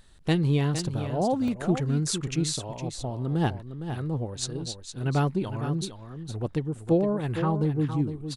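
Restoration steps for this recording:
repair the gap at 0:00.79/0:01.48, 2 ms
echo removal 460 ms −9.5 dB

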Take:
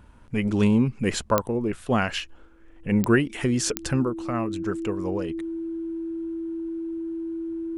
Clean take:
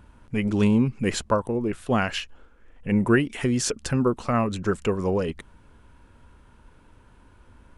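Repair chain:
click removal
notch filter 330 Hz, Q 30
level correction +5.5 dB, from 0:04.05

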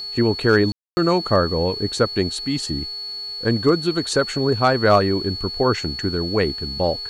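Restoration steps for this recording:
clipped peaks rebuilt −6 dBFS
hum removal 415.9 Hz, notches 37
notch filter 4,400 Hz, Q 30
ambience match 0:00.72–0:00.97

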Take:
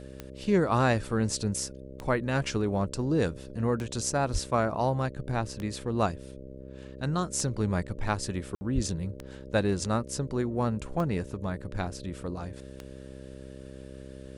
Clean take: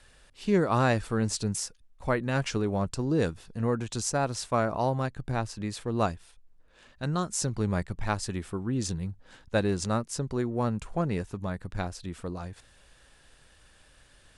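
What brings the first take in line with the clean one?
click removal
hum removal 66 Hz, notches 9
high-pass at the plosives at 0:04.32/0:08.74
ambience match 0:08.55–0:08.61

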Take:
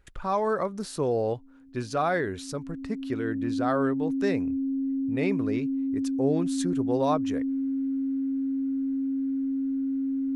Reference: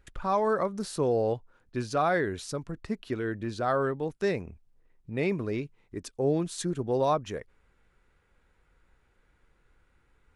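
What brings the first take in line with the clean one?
notch filter 270 Hz, Q 30

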